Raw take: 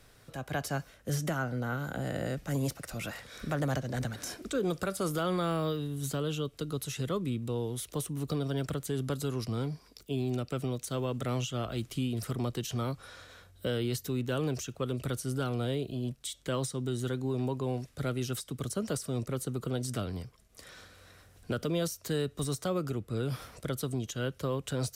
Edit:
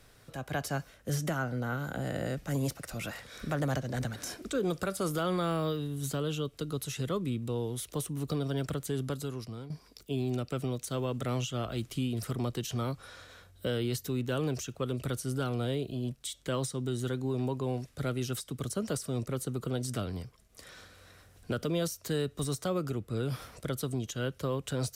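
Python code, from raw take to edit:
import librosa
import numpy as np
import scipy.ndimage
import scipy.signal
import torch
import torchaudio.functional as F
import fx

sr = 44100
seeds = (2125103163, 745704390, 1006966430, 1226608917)

y = fx.edit(x, sr, fx.fade_out_to(start_s=8.95, length_s=0.75, floor_db=-13.0), tone=tone)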